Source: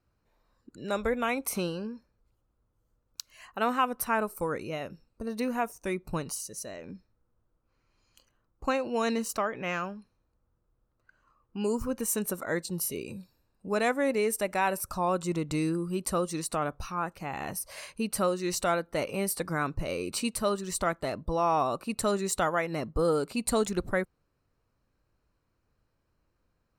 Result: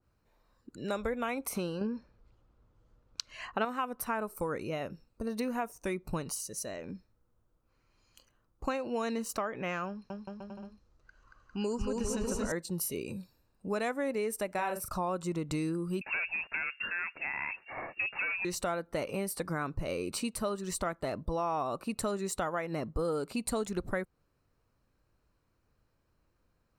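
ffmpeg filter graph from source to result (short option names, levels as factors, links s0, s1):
-filter_complex "[0:a]asettb=1/sr,asplit=3[s0][s1][s2];[s0]atrim=end=1.814[s3];[s1]atrim=start=1.81:end=3.65,asetpts=PTS-STARTPTS,afade=t=in:d=0.004:c=qsin,afade=t=out:st=1.836:d=0.004:c=qsin,lowpass=4600,acontrast=86[s4];[s2]atrim=start=3.646[s5];[s3][s4]acrossfade=d=0.004:c1=hsin:c2=qsin[s6];[s6][s5]acrossfade=d=0.004:c1=qsin:c2=hsin,asettb=1/sr,asplit=3[s7][s8][s9];[s7]atrim=end=9.874[s10];[s8]atrim=start=9.87:end=12.52,asetpts=PTS-STARTPTS,afade=t=in:d=0.004:c=qsin,afade=t=out:st=2.646:d=0.004:c=qsin,asubboost=boost=3:cutoff=120,lowpass=f=5900:t=q:w=1.9,aecho=1:1:230|402.5|531.9|628.9|701.7|756.3:0.794|0.631|0.501|0.398|0.316|0.251,atrim=end_sample=116865[s11];[s9]atrim=start=12.516[s12];[s10][s11]acrossfade=d=0.004:c1=hsin:c2=qsin[s13];[s13][s12]acrossfade=d=0.004:c1=qsin:c2=hsin,asettb=1/sr,asplit=3[s14][s15][s16];[s14]atrim=end=14.534[s17];[s15]atrim=start=14.53:end=14.96,asetpts=PTS-STARTPTS,afade=t=in:d=0.004:c=qsin,afade=t=out:st=0.426:d=0.004:c=qsin,agate=range=0.0224:threshold=0.0112:ratio=3:release=100:detection=peak,asplit=2[s18][s19];[s19]adelay=39,volume=0.501[s20];[s18][s20]amix=inputs=2:normalize=0,atrim=end_sample=18963[s21];[s16]atrim=start=14.956[s22];[s17][s21]acrossfade=d=0.004:c1=hsin:c2=qsin[s23];[s23][s22]acrossfade=d=0.004:c1=qsin:c2=hsin,asettb=1/sr,asplit=3[s24][s25][s26];[s24]atrim=end=16.014[s27];[s25]atrim=start=16.01:end=18.45,asetpts=PTS-STARTPTS,afade=t=in:d=0.004:c=qsin,afade=t=out:st=2.436:d=0.004:c=qsin,acontrast=56,asoftclip=type=hard:threshold=0.0562,lowpass=f=2400:t=q:w=0.5098,lowpass=f=2400:t=q:w=0.6013,lowpass=f=2400:t=q:w=0.9,lowpass=f=2400:t=q:w=2.563,afreqshift=-2800[s28];[s26]atrim=start=18.446[s29];[s27][s28]acrossfade=d=0.004:c1=hsin:c2=qsin[s30];[s30][s29]acrossfade=d=0.004:c1=qsin:c2=hsin,acompressor=threshold=0.0251:ratio=3,adynamicequalizer=threshold=0.00447:dfrequency=1900:dqfactor=0.7:tfrequency=1900:tqfactor=0.7:attack=5:release=100:ratio=0.375:range=2:mode=cutabove:tftype=highshelf,volume=1.12"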